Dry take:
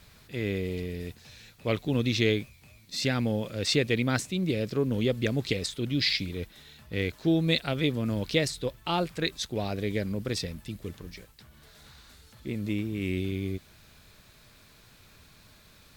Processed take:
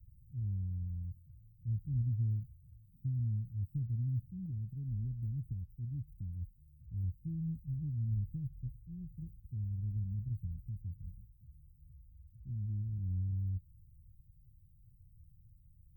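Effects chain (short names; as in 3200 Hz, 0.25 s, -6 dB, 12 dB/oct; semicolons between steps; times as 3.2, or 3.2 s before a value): inverse Chebyshev band-stop 690–7700 Hz, stop band 80 dB; 4.45–7.04 dynamic EQ 120 Hz, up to -3 dB, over -49 dBFS, Q 0.91; gain +1 dB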